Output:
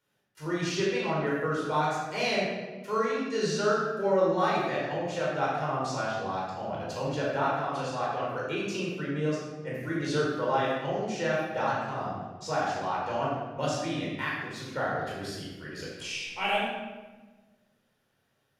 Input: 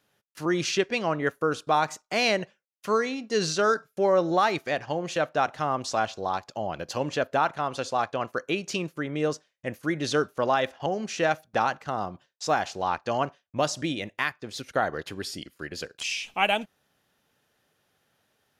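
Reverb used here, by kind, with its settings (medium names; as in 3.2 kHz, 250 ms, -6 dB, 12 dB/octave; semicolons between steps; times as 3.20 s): simulated room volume 970 m³, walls mixed, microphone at 4.6 m; trim -12.5 dB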